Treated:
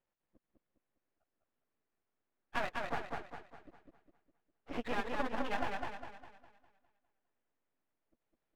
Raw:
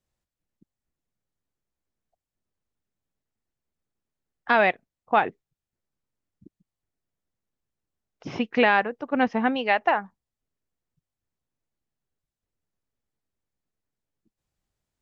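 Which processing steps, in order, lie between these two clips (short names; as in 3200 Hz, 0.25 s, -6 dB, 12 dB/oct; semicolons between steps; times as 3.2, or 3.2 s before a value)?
compressor 5:1, threshold -33 dBFS, peak gain reduction 16.5 dB; plain phase-vocoder stretch 0.57×; three-band isolator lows -14 dB, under 230 Hz, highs -23 dB, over 2800 Hz; half-wave rectifier; warbling echo 0.203 s, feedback 43%, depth 66 cents, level -3.5 dB; gain +6.5 dB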